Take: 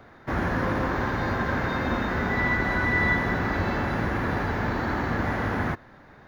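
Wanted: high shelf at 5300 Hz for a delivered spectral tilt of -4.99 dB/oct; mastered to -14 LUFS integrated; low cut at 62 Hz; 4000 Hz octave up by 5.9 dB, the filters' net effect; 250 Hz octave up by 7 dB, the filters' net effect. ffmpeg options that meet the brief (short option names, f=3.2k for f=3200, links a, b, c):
-af "highpass=62,equalizer=f=250:t=o:g=8.5,equalizer=f=4k:t=o:g=4.5,highshelf=f=5.3k:g=6.5,volume=8.5dB"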